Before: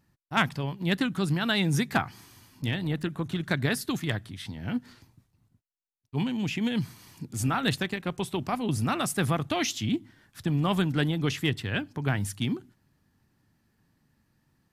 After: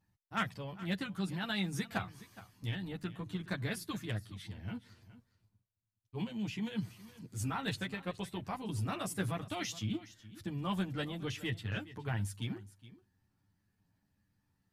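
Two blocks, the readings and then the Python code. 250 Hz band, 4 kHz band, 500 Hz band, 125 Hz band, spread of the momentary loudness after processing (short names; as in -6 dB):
-10.0 dB, -10.0 dB, -10.5 dB, -9.5 dB, 10 LU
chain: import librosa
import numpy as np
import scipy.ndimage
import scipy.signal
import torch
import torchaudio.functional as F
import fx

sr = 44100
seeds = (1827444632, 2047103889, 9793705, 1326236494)

y = fx.chorus_voices(x, sr, voices=4, hz=0.17, base_ms=10, depth_ms=1.2, mix_pct=50)
y = y + 10.0 ** (-17.0 / 20.0) * np.pad(y, (int(418 * sr / 1000.0), 0))[:len(y)]
y = y * 10.0 ** (-7.0 / 20.0)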